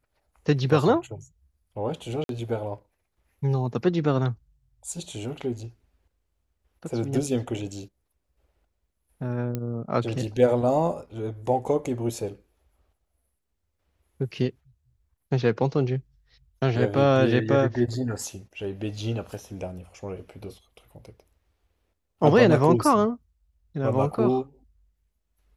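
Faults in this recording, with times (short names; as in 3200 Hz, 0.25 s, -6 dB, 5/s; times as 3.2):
2.24–2.29 gap 52 ms
9.55 pop -16 dBFS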